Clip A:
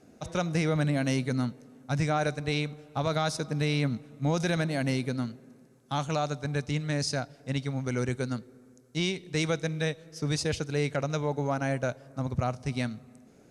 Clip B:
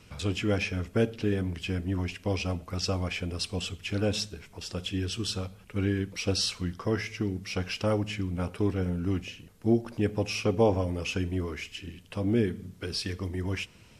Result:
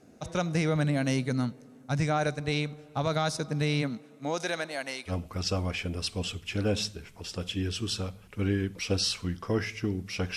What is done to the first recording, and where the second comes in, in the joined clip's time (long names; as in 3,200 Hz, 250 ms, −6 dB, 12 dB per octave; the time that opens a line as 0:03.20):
clip A
0:03.81–0:05.13: high-pass filter 190 Hz → 880 Hz
0:05.09: continue with clip B from 0:02.46, crossfade 0.08 s